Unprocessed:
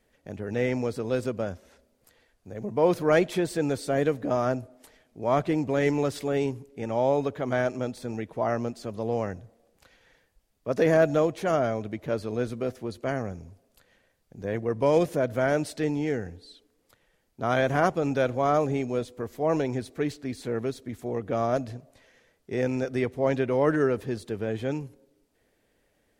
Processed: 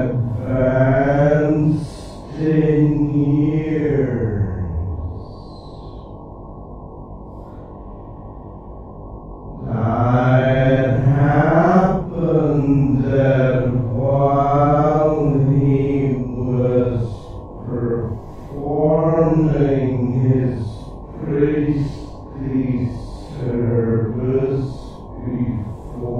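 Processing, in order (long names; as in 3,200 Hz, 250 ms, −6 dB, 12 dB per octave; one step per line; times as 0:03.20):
RIAA equalisation playback
hum with harmonics 50 Hz, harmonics 22, −38 dBFS −4 dB per octave
extreme stretch with random phases 4.5×, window 0.10 s, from 0:15.25
level +4.5 dB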